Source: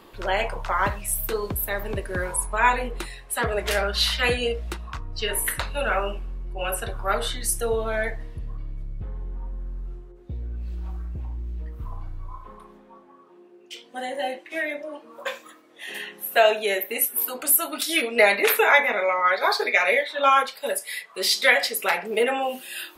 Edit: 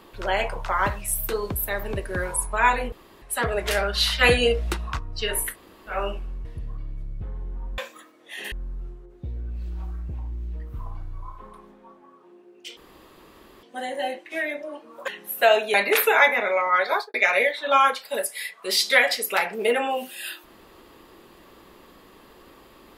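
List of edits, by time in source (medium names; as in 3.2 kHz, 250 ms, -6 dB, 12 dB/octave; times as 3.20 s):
2.92–3.22 s: room tone
4.21–4.99 s: gain +5 dB
5.49–5.94 s: room tone, crossfade 0.16 s
6.45–8.25 s: delete
13.83 s: insert room tone 0.86 s
15.28–16.02 s: move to 9.58 s
16.68–18.26 s: delete
19.41–19.66 s: studio fade out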